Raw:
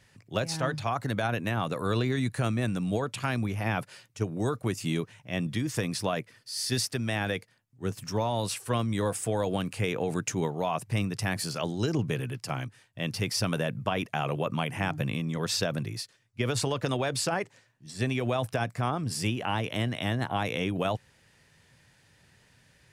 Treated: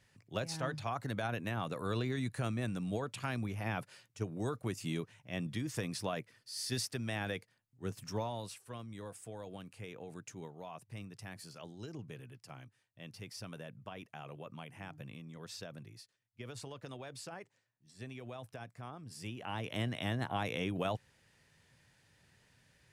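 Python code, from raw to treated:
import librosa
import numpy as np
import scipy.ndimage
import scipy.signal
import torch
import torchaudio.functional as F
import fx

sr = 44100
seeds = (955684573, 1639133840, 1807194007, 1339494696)

y = fx.gain(x, sr, db=fx.line((8.18, -8.0), (8.64, -18.0), (19.07, -18.0), (19.79, -6.5)))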